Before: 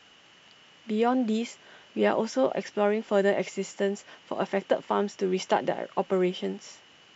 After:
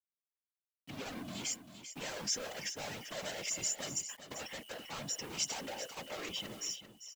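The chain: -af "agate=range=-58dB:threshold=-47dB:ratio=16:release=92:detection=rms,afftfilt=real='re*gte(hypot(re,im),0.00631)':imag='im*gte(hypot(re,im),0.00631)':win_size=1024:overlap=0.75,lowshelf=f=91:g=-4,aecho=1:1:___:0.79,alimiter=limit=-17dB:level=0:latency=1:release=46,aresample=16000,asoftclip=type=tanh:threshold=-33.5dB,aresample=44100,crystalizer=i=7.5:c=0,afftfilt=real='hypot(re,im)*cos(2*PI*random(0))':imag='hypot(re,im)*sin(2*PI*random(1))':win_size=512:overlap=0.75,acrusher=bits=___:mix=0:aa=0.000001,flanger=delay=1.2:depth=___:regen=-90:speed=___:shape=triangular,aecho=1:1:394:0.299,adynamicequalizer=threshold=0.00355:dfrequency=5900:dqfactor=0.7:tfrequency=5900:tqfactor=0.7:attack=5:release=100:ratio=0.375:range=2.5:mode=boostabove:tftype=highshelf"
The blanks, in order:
3.7, 8, 2, 0.37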